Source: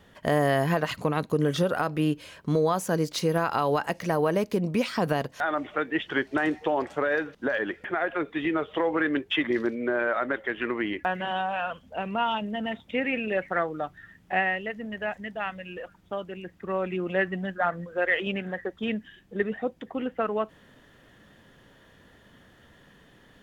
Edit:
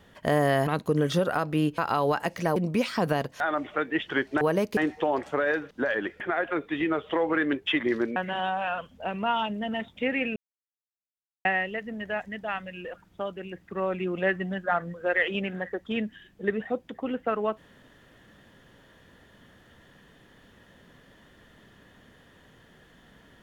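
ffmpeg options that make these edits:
-filter_complex "[0:a]asplit=9[a][b][c][d][e][f][g][h][i];[a]atrim=end=0.672[j];[b]atrim=start=1.108:end=2.222[k];[c]atrim=start=3.418:end=4.202[l];[d]atrim=start=4.558:end=6.412[m];[e]atrim=start=4.198:end=4.562[n];[f]atrim=start=6.408:end=9.802[o];[g]atrim=start=11.078:end=13.28,asetpts=PTS-STARTPTS,afade=t=out:st=2.198:d=0.004:c=hsin[p];[h]atrim=start=13.28:end=14.37,asetpts=PTS-STARTPTS,volume=0[q];[i]atrim=start=14.37,asetpts=PTS-STARTPTS,afade=t=in:d=0.004:c=hsin[r];[j][k]acrossfade=d=0.004:c1=hsin:c2=hsin[s];[s][l]acrossfade=d=0.004:c1=hsin:c2=hsin[t];[t][m]acrossfade=d=0.004:c1=hsin:c2=hsin[u];[u][n]acrossfade=d=0.004:c1=hsin:c2=hsin[v];[v][o]acrossfade=d=0.004:c1=hsin:c2=hsin[w];[p][q][r]concat=n=3:v=0:a=1[x];[w][x]acrossfade=d=0.004:c1=hsin:c2=hsin"

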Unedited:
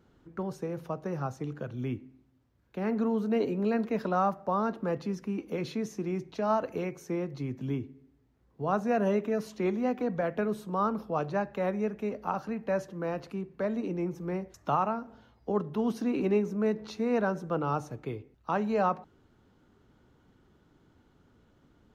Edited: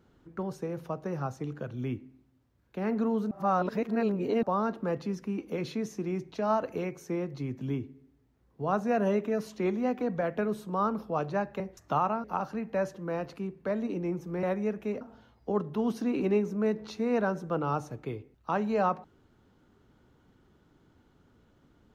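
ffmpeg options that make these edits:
-filter_complex "[0:a]asplit=7[a][b][c][d][e][f][g];[a]atrim=end=3.312[h];[b]atrim=start=3.308:end=4.432,asetpts=PTS-STARTPTS,areverse[i];[c]atrim=start=4.428:end=11.602[j];[d]atrim=start=14.368:end=15.012[k];[e]atrim=start=12.178:end=14.372[l];[f]atrim=start=11.598:end=12.182[m];[g]atrim=start=15.008[n];[h][i]acrossfade=d=0.004:c1=hsin:c2=hsin[o];[o][j]acrossfade=d=0.004:c1=hsin:c2=hsin[p];[p][k]acrossfade=d=0.004:c1=hsin:c2=hsin[q];[q][l]acrossfade=d=0.004:c1=hsin:c2=hsin[r];[r][m]acrossfade=d=0.004:c1=hsin:c2=hsin[s];[s][n]acrossfade=d=0.004:c1=hsin:c2=hsin"

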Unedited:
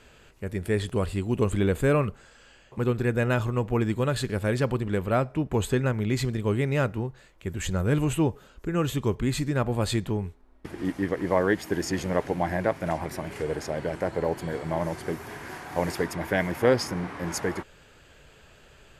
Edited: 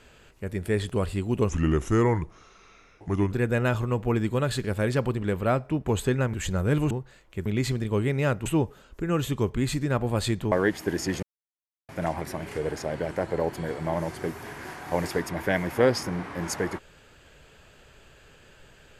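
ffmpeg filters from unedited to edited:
-filter_complex "[0:a]asplit=10[a][b][c][d][e][f][g][h][i][j];[a]atrim=end=1.494[k];[b]atrim=start=1.49:end=2.97,asetpts=PTS-STARTPTS,asetrate=35721,aresample=44100[l];[c]atrim=start=2.966:end=5.992[m];[d]atrim=start=7.538:end=8.112[n];[e]atrim=start=6.988:end=7.542[o];[f]atrim=start=5.988:end=6.992[p];[g]atrim=start=8.108:end=10.172[q];[h]atrim=start=11.358:end=12.07,asetpts=PTS-STARTPTS,afade=t=out:st=0.708:d=0.004:c=hsin[r];[i]atrim=start=12.07:end=12.73,asetpts=PTS-STARTPTS,volume=0[s];[j]atrim=start=12.73,asetpts=PTS-STARTPTS,afade=t=in:d=0.004:c=hsin[t];[k][l]acrossfade=d=0.004:c1=hsin:c2=hsin[u];[u][m]acrossfade=d=0.004:c1=hsin:c2=hsin[v];[v][n]acrossfade=d=0.004:c1=hsin:c2=hsin[w];[w][o]acrossfade=d=0.004:c1=hsin:c2=hsin[x];[x][p]acrossfade=d=0.004:c1=hsin:c2=hsin[y];[y][q]acrossfade=d=0.004:c1=hsin:c2=hsin[z];[r][s][t]concat=n=3:v=0:a=1[aa];[z][aa]acrossfade=d=0.004:c1=hsin:c2=hsin"

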